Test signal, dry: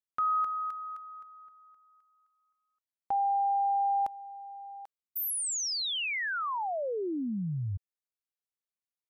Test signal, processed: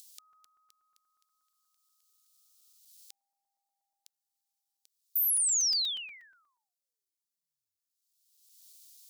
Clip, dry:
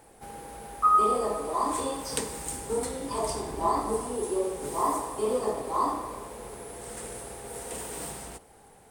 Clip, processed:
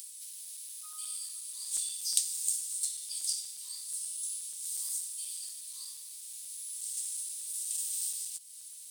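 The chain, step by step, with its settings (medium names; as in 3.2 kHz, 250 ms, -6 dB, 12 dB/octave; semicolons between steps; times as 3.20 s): upward compressor, threshold -34 dBFS; inverse Chebyshev high-pass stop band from 690 Hz, stop band 80 dB; crackling interface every 0.12 s, samples 128, zero, from 0.33 s; trim +5.5 dB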